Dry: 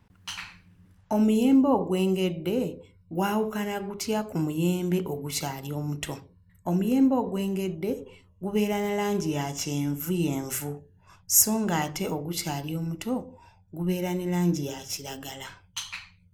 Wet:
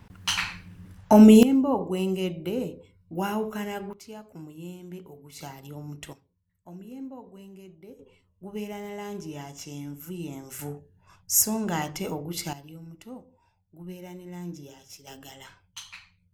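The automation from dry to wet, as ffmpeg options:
ffmpeg -i in.wav -af "asetnsamples=nb_out_samples=441:pad=0,asendcmd='1.43 volume volume -2.5dB;3.93 volume volume -15dB;5.39 volume volume -8dB;6.13 volume volume -18dB;7.99 volume volume -9.5dB;10.59 volume volume -2dB;12.53 volume volume -13dB;15.07 volume volume -7dB',volume=10dB" out.wav

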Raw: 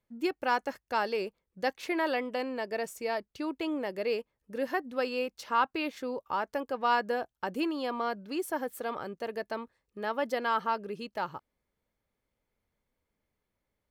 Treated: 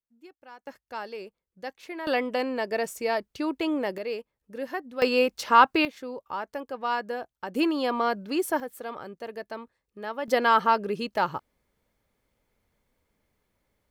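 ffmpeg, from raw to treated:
ffmpeg -i in.wav -af "asetnsamples=nb_out_samples=441:pad=0,asendcmd='0.67 volume volume -6.5dB;2.07 volume volume 5.5dB;3.98 volume volume -1.5dB;5.02 volume volume 10dB;5.85 volume volume -1.5dB;7.55 volume volume 6.5dB;8.6 volume volume -1.5dB;10.28 volume volume 8.5dB',volume=-19.5dB" out.wav

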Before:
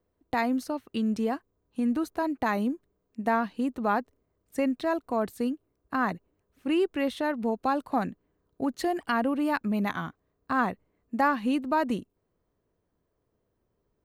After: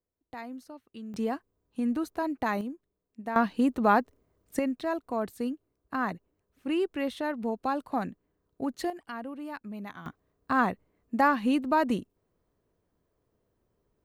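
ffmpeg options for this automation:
ffmpeg -i in.wav -af "asetnsamples=nb_out_samples=441:pad=0,asendcmd='1.14 volume volume -2dB;2.61 volume volume -8.5dB;3.36 volume volume 4dB;4.59 volume volume -3dB;8.9 volume volume -12dB;10.06 volume volume 1dB',volume=-14dB" out.wav

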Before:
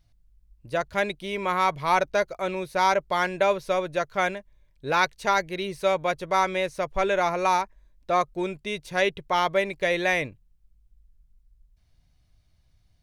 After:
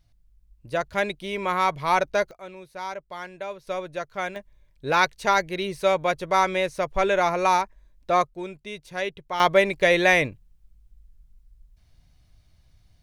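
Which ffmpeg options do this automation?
ffmpeg -i in.wav -af "asetnsamples=nb_out_samples=441:pad=0,asendcmd='2.31 volume volume -12dB;3.67 volume volume -5dB;4.36 volume volume 2dB;8.27 volume volume -5.5dB;9.4 volume volume 5.5dB',volume=0.5dB" out.wav

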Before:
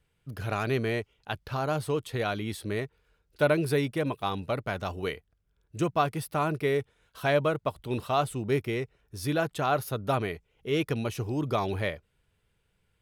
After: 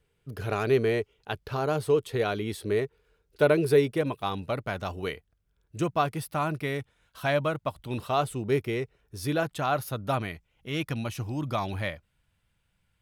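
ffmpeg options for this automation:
ffmpeg -i in.wav -af "asetnsamples=nb_out_samples=441:pad=0,asendcmd='4.01 equalizer g -1;6.24 equalizer g -8;8 equalizer g 2;9.43 equalizer g -6;10.22 equalizer g -13',equalizer=frequency=420:width_type=o:width=0.41:gain=8.5" out.wav

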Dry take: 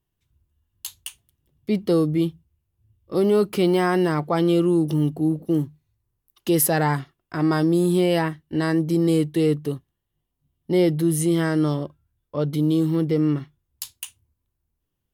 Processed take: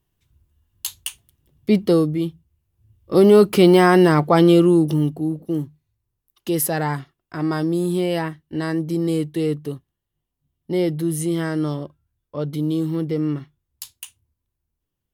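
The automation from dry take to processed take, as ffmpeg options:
ffmpeg -i in.wav -af "volume=15dB,afade=type=out:start_time=1.73:duration=0.46:silence=0.398107,afade=type=in:start_time=2.19:duration=0.97:silence=0.354813,afade=type=out:start_time=4.39:duration=0.87:silence=0.354813" out.wav

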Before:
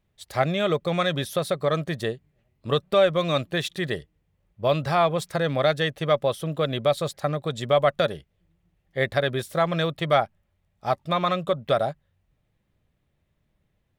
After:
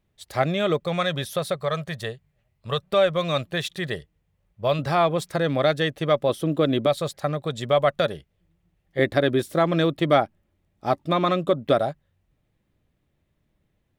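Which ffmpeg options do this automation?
ffmpeg -i in.wav -af "asetnsamples=nb_out_samples=441:pad=0,asendcmd='0.8 equalizer g -4.5;1.56 equalizer g -14.5;2.82 equalizer g -4;4.79 equalizer g 5.5;6.29 equalizer g 13;6.86 equalizer g 1;8.99 equalizer g 13;11.78 equalizer g 4.5',equalizer=frequency=300:width_type=o:width=0.77:gain=3" out.wav

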